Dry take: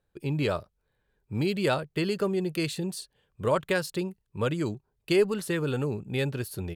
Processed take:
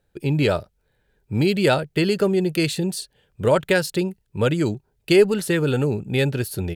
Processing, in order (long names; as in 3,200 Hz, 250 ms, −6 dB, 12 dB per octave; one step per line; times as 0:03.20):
parametric band 1,100 Hz −11 dB 0.21 octaves
level +8 dB